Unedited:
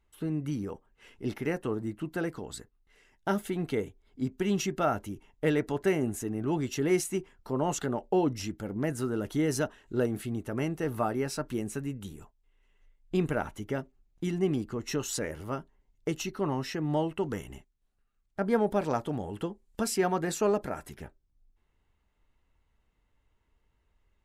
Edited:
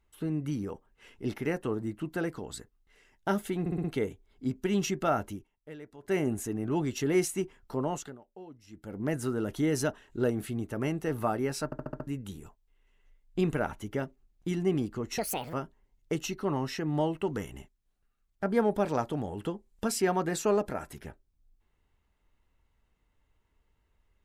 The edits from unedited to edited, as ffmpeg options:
-filter_complex "[0:a]asplit=17[s0][s1][s2][s3][s4][s5][s6][s7][s8][s9][s10][s11][s12][s13][s14][s15][s16];[s0]atrim=end=3.662[s17];[s1]atrim=start=3.598:end=3.662[s18];[s2]atrim=start=3.598:end=3.662[s19];[s3]atrim=start=3.598:end=3.662[s20];[s4]atrim=start=3.598:end=5.24,asetpts=PTS-STARTPTS,afade=t=out:st=1.482:d=0.16:silence=0.11885[s21];[s5]atrim=start=5.24:end=5.78,asetpts=PTS-STARTPTS,volume=0.119[s22];[s6]atrim=start=5.78:end=7.94,asetpts=PTS-STARTPTS,afade=t=in:d=0.16:silence=0.11885,afade=t=out:st=1.73:d=0.43:silence=0.0841395[s23];[s7]atrim=start=7.94:end=8.43,asetpts=PTS-STARTPTS,volume=0.0841[s24];[s8]atrim=start=8.43:end=11.482,asetpts=PTS-STARTPTS,afade=t=in:d=0.43:silence=0.0841395[s25];[s9]atrim=start=11.408:end=11.482[s26];[s10]atrim=start=11.408:end=11.482[s27];[s11]atrim=start=11.408:end=11.482[s28];[s12]atrim=start=11.408:end=11.482[s29];[s13]atrim=start=11.408:end=11.482[s30];[s14]atrim=start=11.828:end=14.944[s31];[s15]atrim=start=14.94:end=15.49,asetpts=PTS-STARTPTS,asetrate=69237,aresample=44100,atrim=end_sample=15449,asetpts=PTS-STARTPTS[s32];[s16]atrim=start=15.486[s33];[s17][s18]acrossfade=d=0.004:c1=hsin:c2=hsin[s34];[s34][s19]acrossfade=d=0.004:c1=hsin:c2=hsin[s35];[s35][s20]acrossfade=d=0.004:c1=hsin:c2=hsin[s36];[s21][s22][s23][s24][s25]concat=n=5:v=0:a=1[s37];[s36][s37]acrossfade=d=0.004:c1=hsin:c2=hsin[s38];[s38][s26]acrossfade=d=0.004:c1=hsin:c2=hsin[s39];[s39][s27]acrossfade=d=0.004:c1=hsin:c2=hsin[s40];[s40][s28]acrossfade=d=0.004:c1=hsin:c2=hsin[s41];[s41][s29]acrossfade=d=0.004:c1=hsin:c2=hsin[s42];[s42][s30]acrossfade=d=0.004:c1=hsin:c2=hsin[s43];[s43][s31]acrossfade=d=0.004:c1=hsin:c2=hsin[s44];[s44][s32]acrossfade=d=0.004:c1=hsin:c2=hsin[s45];[s45][s33]acrossfade=d=0.004:c1=hsin:c2=hsin"

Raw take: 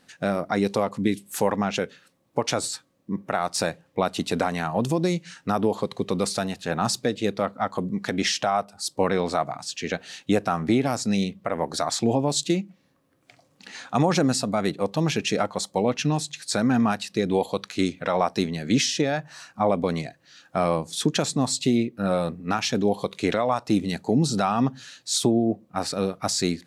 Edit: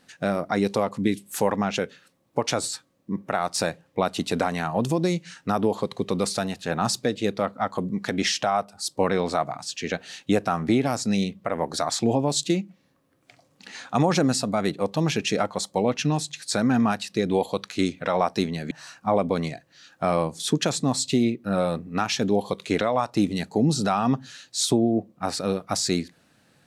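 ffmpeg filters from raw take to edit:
-filter_complex "[0:a]asplit=2[s0][s1];[s0]atrim=end=18.712[s2];[s1]atrim=start=19.238[s3];[s2][s3]acrossfade=d=0.004:c1=hsin:c2=hsin"

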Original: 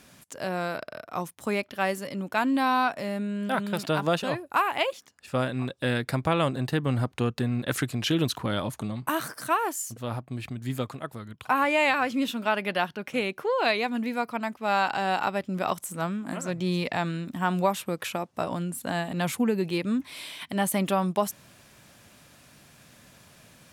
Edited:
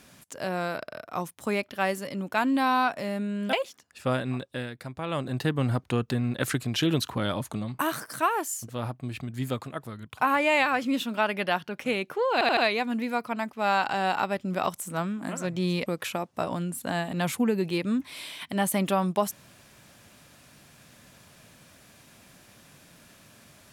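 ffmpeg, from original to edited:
-filter_complex "[0:a]asplit=8[s0][s1][s2][s3][s4][s5][s6][s7];[s0]atrim=end=3.532[s8];[s1]atrim=start=4.808:end=5.97,asetpts=PTS-STARTPTS,afade=t=out:st=0.752:d=0.41:silence=0.281838[s9];[s2]atrim=start=5.97:end=6.28,asetpts=PTS-STARTPTS,volume=0.282[s10];[s3]atrim=start=6.28:end=13.692,asetpts=PTS-STARTPTS,afade=t=in:d=0.41:silence=0.281838[s11];[s4]atrim=start=13.608:end=13.692[s12];[s5]atrim=start=13.608:end=13.692[s13];[s6]atrim=start=13.608:end=16.902[s14];[s7]atrim=start=17.858[s15];[s9][s10][s11]concat=n=3:v=0:a=1[s16];[s8][s16]acrossfade=d=0.004:c1=hsin:c2=hsin[s17];[s17][s12]acrossfade=d=0.004:c1=hsin:c2=hsin[s18];[s18][s13]acrossfade=d=0.004:c1=hsin:c2=hsin[s19];[s19][s14]acrossfade=d=0.004:c1=hsin:c2=hsin[s20];[s20][s15]acrossfade=d=0.004:c1=hsin:c2=hsin"

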